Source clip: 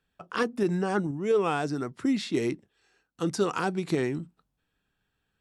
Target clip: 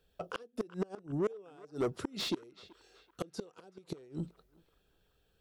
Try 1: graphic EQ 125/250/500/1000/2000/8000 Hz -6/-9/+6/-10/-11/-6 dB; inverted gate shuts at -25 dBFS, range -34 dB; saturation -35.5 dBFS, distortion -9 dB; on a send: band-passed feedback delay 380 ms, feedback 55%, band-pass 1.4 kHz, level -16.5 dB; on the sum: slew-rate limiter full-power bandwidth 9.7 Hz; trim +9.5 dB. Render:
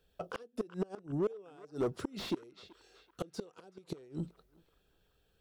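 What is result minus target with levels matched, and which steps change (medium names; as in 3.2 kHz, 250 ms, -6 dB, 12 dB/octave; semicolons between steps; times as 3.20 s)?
slew-rate limiter: distortion +6 dB
change: slew-rate limiter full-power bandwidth 26 Hz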